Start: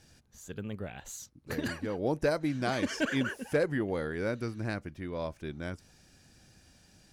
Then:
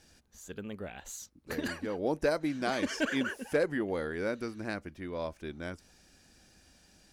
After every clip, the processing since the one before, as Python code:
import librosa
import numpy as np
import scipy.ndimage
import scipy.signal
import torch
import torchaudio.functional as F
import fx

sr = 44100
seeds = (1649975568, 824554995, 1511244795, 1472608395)

y = fx.peak_eq(x, sr, hz=120.0, db=-12.0, octaves=0.68)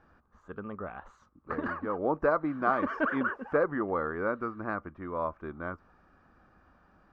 y = fx.lowpass_res(x, sr, hz=1200.0, q=6.7)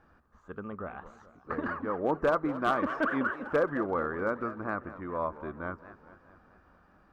y = np.clip(10.0 ** (18.5 / 20.0) * x, -1.0, 1.0) / 10.0 ** (18.5 / 20.0)
y = fx.echo_warbled(y, sr, ms=215, feedback_pct=58, rate_hz=2.8, cents=208, wet_db=-15.0)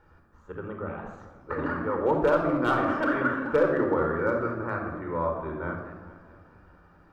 y = fx.room_shoebox(x, sr, seeds[0], volume_m3=3800.0, walls='furnished', distance_m=4.5)